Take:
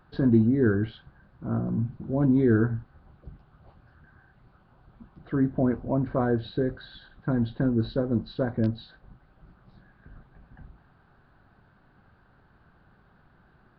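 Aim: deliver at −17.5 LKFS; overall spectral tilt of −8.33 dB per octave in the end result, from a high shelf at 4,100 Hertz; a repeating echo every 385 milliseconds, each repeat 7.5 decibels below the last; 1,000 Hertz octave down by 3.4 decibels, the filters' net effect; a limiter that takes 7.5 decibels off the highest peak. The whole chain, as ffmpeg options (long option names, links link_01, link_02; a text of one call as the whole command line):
ffmpeg -i in.wav -af "equalizer=frequency=1000:width_type=o:gain=-5.5,highshelf=frequency=4100:gain=3.5,alimiter=limit=-17dB:level=0:latency=1,aecho=1:1:385|770|1155|1540|1925:0.422|0.177|0.0744|0.0312|0.0131,volume=10.5dB" out.wav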